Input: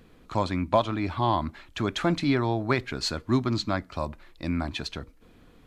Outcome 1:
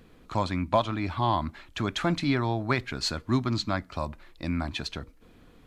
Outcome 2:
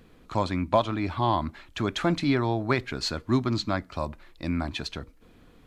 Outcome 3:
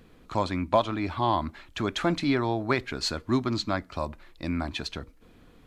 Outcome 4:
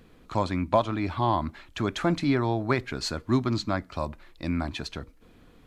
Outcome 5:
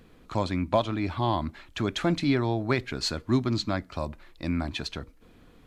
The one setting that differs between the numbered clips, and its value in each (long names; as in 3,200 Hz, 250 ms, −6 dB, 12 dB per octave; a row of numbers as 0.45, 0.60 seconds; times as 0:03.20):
dynamic equaliser, frequency: 410, 9,000, 130, 3,400, 1,100 Hertz